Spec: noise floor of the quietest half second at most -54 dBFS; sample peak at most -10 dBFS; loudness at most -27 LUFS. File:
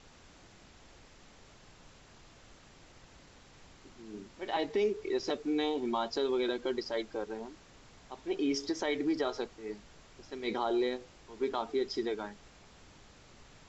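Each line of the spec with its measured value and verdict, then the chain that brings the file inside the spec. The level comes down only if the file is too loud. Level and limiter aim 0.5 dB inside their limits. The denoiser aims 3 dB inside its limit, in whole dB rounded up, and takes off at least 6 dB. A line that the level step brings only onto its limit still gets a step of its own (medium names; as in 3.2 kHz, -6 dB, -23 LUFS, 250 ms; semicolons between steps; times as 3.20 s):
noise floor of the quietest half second -57 dBFS: pass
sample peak -20.5 dBFS: pass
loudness -34.5 LUFS: pass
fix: none needed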